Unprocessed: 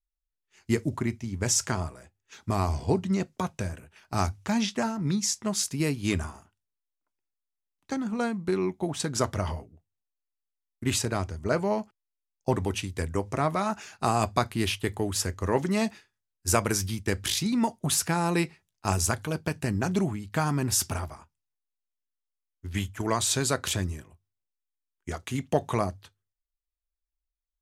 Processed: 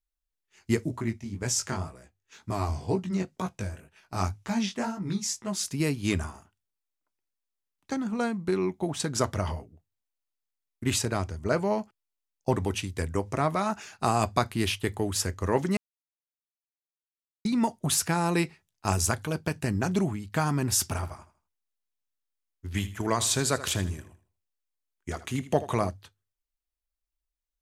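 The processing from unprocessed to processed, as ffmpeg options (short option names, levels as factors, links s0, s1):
-filter_complex "[0:a]asplit=3[s0][s1][s2];[s0]afade=t=out:st=0.86:d=0.02[s3];[s1]flanger=delay=15.5:depth=6.5:speed=2,afade=t=in:st=0.86:d=0.02,afade=t=out:st=5.65:d=0.02[s4];[s2]afade=t=in:st=5.65:d=0.02[s5];[s3][s4][s5]amix=inputs=3:normalize=0,asettb=1/sr,asplit=3[s6][s7][s8];[s6]atrim=end=20.834[s9];[s7]atrim=start=20.83:end=25.89,asetpts=PTS-STARTPTS,afade=t=in:d=0.004:c=qsin,afade=t=out:st=5.056:d=0.004:c=qsin,aecho=1:1:79|158|237:0.178|0.0551|0.0171,atrim=end_sample=223146[s10];[s8]atrim=start=25.886[s11];[s9][s10]acrossfade=d=0.004:c1=hsin:c2=qsin[s12];[s12][s11]acrossfade=d=0.004:c1=qsin:c2=hsin,asplit=3[s13][s14][s15];[s13]atrim=end=15.77,asetpts=PTS-STARTPTS,afade=t=out:st=15.766:d=0.004:c=hsin[s16];[s14]atrim=start=15.77:end=17.45,asetpts=PTS-STARTPTS,volume=0[s17];[s15]atrim=start=17.45,asetpts=PTS-STARTPTS,afade=t=in:d=0.004:c=hsin[s18];[s16][s17][s18]concat=n=3:v=0:a=1"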